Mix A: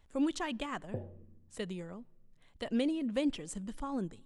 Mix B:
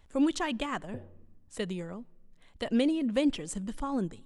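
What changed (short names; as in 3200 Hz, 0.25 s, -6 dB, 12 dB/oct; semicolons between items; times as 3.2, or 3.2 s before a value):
speech +5.0 dB; background -4.0 dB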